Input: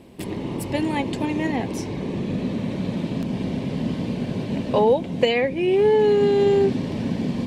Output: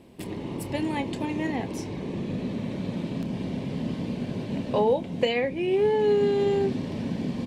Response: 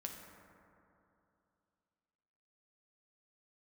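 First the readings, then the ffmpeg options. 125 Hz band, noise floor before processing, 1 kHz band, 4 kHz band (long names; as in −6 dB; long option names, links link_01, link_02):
−5.0 dB, −31 dBFS, −5.0 dB, −5.0 dB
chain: -filter_complex "[0:a]asplit=2[link_01][link_02];[link_02]adelay=29,volume=-14dB[link_03];[link_01][link_03]amix=inputs=2:normalize=0,volume=-5dB"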